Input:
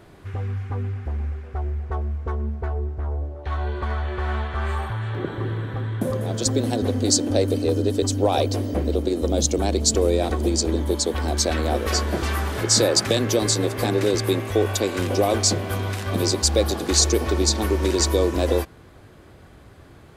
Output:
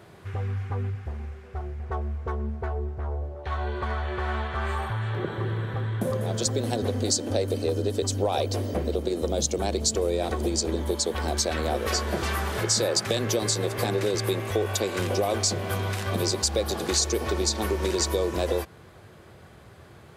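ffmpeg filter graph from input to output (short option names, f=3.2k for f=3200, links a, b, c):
-filter_complex "[0:a]asettb=1/sr,asplit=3[a][b][c];[a]atrim=end=0.904[d];[b]atrim=start=0.9:end=1.8,asetpts=PTS-STARTPTS,afade=t=in:d=0.004:c=qsin,afade=t=out:st=0.896:d=0.004:c=qsin,equalizer=f=790:w=0.3:g=-4.5,asplit=2[e][f];[f]adelay=47,volume=-7.5dB[g];[e][g]amix=inputs=2:normalize=0,atrim=end_sample=39690[h];[c]atrim=start=1.796[i];[d][h]acrossfade=d=0.004:c1=hsin:c2=qsin[j];[j][i]acrossfade=d=0.004:c1=qsin:c2=hsin,highpass=83,equalizer=f=280:w=5.5:g=-11,acompressor=threshold=-23dB:ratio=2.5"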